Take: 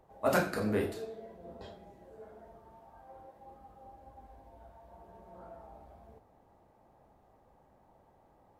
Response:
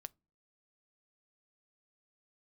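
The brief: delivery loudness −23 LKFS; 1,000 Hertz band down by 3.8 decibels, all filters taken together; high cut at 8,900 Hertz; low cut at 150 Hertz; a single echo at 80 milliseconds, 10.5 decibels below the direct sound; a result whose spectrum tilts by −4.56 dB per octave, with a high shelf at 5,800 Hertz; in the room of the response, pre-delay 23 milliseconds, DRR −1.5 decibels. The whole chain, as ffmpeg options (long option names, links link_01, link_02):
-filter_complex "[0:a]highpass=150,lowpass=8900,equalizer=frequency=1000:width_type=o:gain=-6,highshelf=frequency=5800:gain=5.5,aecho=1:1:80:0.299,asplit=2[link_01][link_02];[1:a]atrim=start_sample=2205,adelay=23[link_03];[link_02][link_03]afir=irnorm=-1:irlink=0,volume=7dB[link_04];[link_01][link_04]amix=inputs=2:normalize=0,volume=8dB"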